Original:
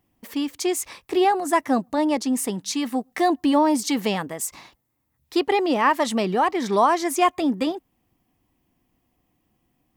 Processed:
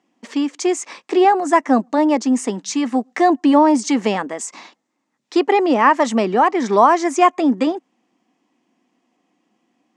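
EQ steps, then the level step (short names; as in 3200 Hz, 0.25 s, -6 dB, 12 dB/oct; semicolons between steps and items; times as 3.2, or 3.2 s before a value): elliptic band-pass 220–7100 Hz, stop band 40 dB; dynamic EQ 3900 Hz, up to -8 dB, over -45 dBFS, Q 1.3; +6.5 dB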